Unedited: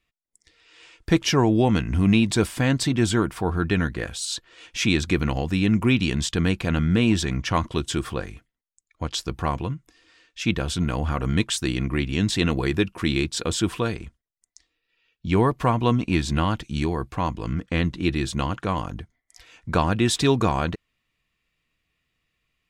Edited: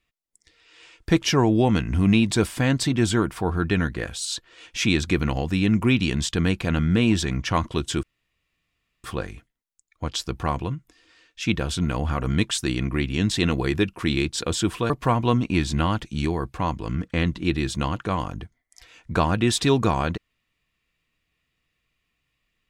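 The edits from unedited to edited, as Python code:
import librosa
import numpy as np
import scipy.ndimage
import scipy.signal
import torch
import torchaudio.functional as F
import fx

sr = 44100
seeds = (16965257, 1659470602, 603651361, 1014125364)

y = fx.edit(x, sr, fx.insert_room_tone(at_s=8.03, length_s=1.01),
    fx.cut(start_s=13.89, length_s=1.59), tone=tone)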